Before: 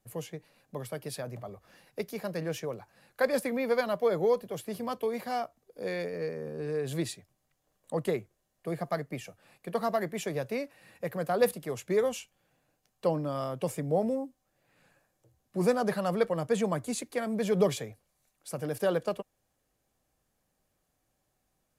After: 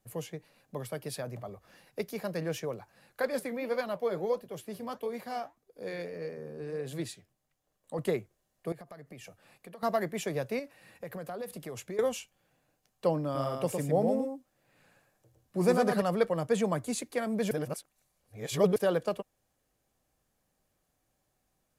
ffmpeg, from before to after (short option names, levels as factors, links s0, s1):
-filter_complex "[0:a]asettb=1/sr,asplit=3[s0][s1][s2];[s0]atrim=end=3.214[s3];[s1]atrim=start=3.21:end=7.99,asetpts=PTS-STARTPTS,afade=t=in:d=0.004:c=qsin,afade=t=out:st=4.776:d=0.004:c=qsin,flanger=delay=2.3:depth=9.4:regen=-76:speed=1.6:shape=triangular[s4];[s2]atrim=start=7.986[s5];[s3][s4]acrossfade=d=0.004:c1=hsin:c2=qsin[s6];[s6][s5]acrossfade=d=0.004:c1=qsin:c2=hsin,asettb=1/sr,asplit=3[s7][s8][s9];[s7]atrim=end=8.724[s10];[s8]atrim=start=8.72:end=9.83,asetpts=PTS-STARTPTS,afade=t=in:d=0.004:c=qsin,afade=t=out:st=1.106:d=0.004:c=qsin,acompressor=threshold=0.00708:ratio=16:attack=3.2:release=140:knee=1:detection=peak[s11];[s9]atrim=start=9.826[s12];[s10][s11]acrossfade=d=0.004:c1=hsin:c2=qsin[s13];[s13][s12]acrossfade=d=0.004:c1=qsin:c2=hsin,asettb=1/sr,asplit=3[s14][s15][s16];[s14]atrim=end=10.594[s17];[s15]atrim=start=10.59:end=11.99,asetpts=PTS-STARTPTS,afade=t=in:d=0.004:c=qsin,afade=t=out:st=1.396:d=0.004:c=qsin,acompressor=threshold=0.0158:ratio=6:attack=3.2:release=140:knee=1:detection=peak[s18];[s16]atrim=start=11.986[s19];[s17][s18]acrossfade=d=0.004:c1=hsin:c2=qsin[s20];[s20][s19]acrossfade=d=0.004:c1=qsin:c2=hsin,asettb=1/sr,asplit=3[s21][s22][s23];[s21]atrim=end=13.244[s24];[s22]atrim=start=13.24:end=16.02,asetpts=PTS-STARTPTS,afade=t=in:d=0.004:c=qsin,afade=t=out:st=2.776:d=0.004:c=qsin,aecho=1:1:110:0.631,atrim=end_sample=122598[s25];[s23]atrim=start=16.016[s26];[s24][s25]acrossfade=d=0.004:c1=hsin:c2=qsin[s27];[s27][s26]acrossfade=d=0.004:c1=qsin:c2=hsin,asplit=3[s28][s29][s30];[s28]atrim=end=17.512[s31];[s29]atrim=start=17.508:end=18.762,asetpts=PTS-STARTPTS,areverse[s32];[s30]atrim=start=18.758[s33];[s31][s32]acrossfade=d=0.004:c1=hsin:c2=hsin[s34];[s34][s33]acrossfade=d=0.004:c1=hsin:c2=hsin"